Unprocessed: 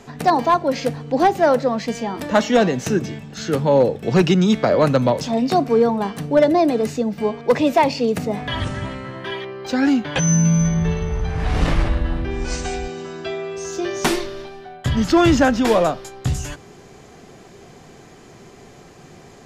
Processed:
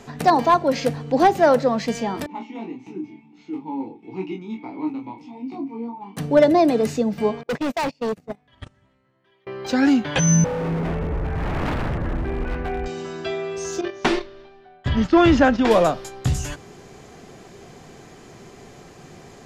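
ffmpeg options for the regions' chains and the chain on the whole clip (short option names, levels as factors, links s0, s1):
-filter_complex "[0:a]asettb=1/sr,asplit=3[s0][s1][s2];[s0]atrim=end=2.264[s3];[s1]atrim=start=2.26:end=6.17,asetpts=PTS-STARTPTS,afade=t=in:d=0.004:c=qsin,afade=t=out:st=3.906:d=0.004:c=qsin,flanger=delay=15.5:depth=3.1:speed=1.6,asplit=3[s4][s5][s6];[s4]bandpass=f=300:t=q:w=8,volume=1[s7];[s5]bandpass=f=870:t=q:w=8,volume=0.501[s8];[s6]bandpass=f=2240:t=q:w=8,volume=0.355[s9];[s7][s8][s9]amix=inputs=3:normalize=0,asplit=2[s10][s11];[s11]adelay=26,volume=0.562[s12];[s10][s12]amix=inputs=2:normalize=0,atrim=end_sample=172431[s13];[s2]atrim=start=6.166[s14];[s3][s13]acrossfade=d=0.004:c1=hsin:c2=qsin[s15];[s15][s14]acrossfade=d=0.004:c1=qsin:c2=hsin,asettb=1/sr,asplit=3[s16][s17][s18];[s16]atrim=end=7.434[s19];[s17]atrim=start=7.43:end=9.47,asetpts=PTS-STARTPTS,afade=t=in:d=0.004:c=qsin,afade=t=out:st=2.036:d=0.004:c=qsin,agate=range=0.02:threshold=0.1:ratio=16:release=100:detection=peak,asoftclip=type=hard:threshold=0.0891[s20];[s18]atrim=start=9.466[s21];[s19][s20]acrossfade=d=0.004:c1=hsin:c2=qsin[s22];[s22][s21]acrossfade=d=0.004:c1=qsin:c2=hsin,asettb=1/sr,asplit=3[s23][s24][s25];[s23]atrim=end=10.444[s26];[s24]atrim=start=10.44:end=12.86,asetpts=PTS-STARTPTS,afade=t=in:d=0.004:c=qsin,afade=t=out:st=2.416:d=0.004:c=qsin,lowpass=f=2100:w=0.5412,lowpass=f=2100:w=1.3066,aeval=exprs='0.112*(abs(mod(val(0)/0.112+3,4)-2)-1)':c=same[s27];[s25]atrim=start=12.856[s28];[s26][s27]acrossfade=d=0.004:c1=hsin:c2=qsin[s29];[s29][s28]acrossfade=d=0.004:c1=qsin:c2=hsin,asettb=1/sr,asplit=3[s30][s31][s32];[s30]atrim=end=13.814[s33];[s31]atrim=start=13.81:end=15.71,asetpts=PTS-STARTPTS,afade=t=in:d=0.004:c=qsin,afade=t=out:st=1.896:d=0.004:c=qsin,lowpass=3900,agate=range=0.282:threshold=0.0631:ratio=16:release=100:detection=peak,equalizer=f=140:t=o:w=0.73:g=-4.5[s34];[s32]atrim=start=15.706[s35];[s33][s34]acrossfade=d=0.004:c1=hsin:c2=qsin[s36];[s36][s35]acrossfade=d=0.004:c1=qsin:c2=hsin"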